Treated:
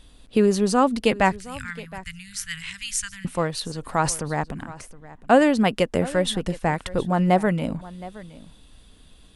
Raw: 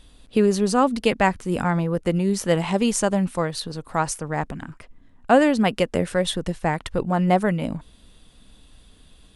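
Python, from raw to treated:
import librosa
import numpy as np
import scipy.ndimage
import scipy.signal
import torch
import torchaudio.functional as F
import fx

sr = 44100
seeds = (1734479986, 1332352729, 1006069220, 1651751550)

y = fx.ellip_bandstop(x, sr, low_hz=110.0, high_hz=1700.0, order=3, stop_db=50, at=(1.32, 3.25))
y = fx.transient(y, sr, attack_db=1, sustain_db=8, at=(3.81, 4.28), fade=0.02)
y = y + 10.0 ** (-18.5 / 20.0) * np.pad(y, (int(718 * sr / 1000.0), 0))[:len(y)]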